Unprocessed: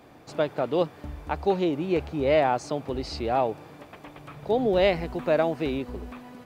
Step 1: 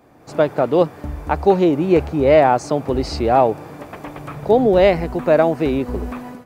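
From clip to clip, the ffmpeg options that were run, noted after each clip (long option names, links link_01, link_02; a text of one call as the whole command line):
ffmpeg -i in.wav -af "equalizer=frequency=3400:width=1.1:gain=-7,dynaudnorm=framelen=180:gausssize=3:maxgain=12.5dB" out.wav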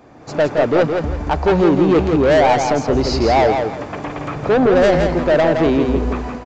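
ffmpeg -i in.wav -af "aresample=16000,asoftclip=type=tanh:threshold=-16dB,aresample=44100,aecho=1:1:167|334|501|668:0.531|0.143|0.0387|0.0104,volume=6dB" out.wav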